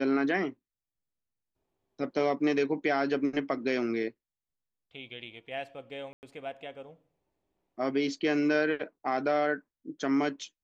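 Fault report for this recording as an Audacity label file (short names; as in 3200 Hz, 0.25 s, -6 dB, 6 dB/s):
6.130000	6.230000	gap 99 ms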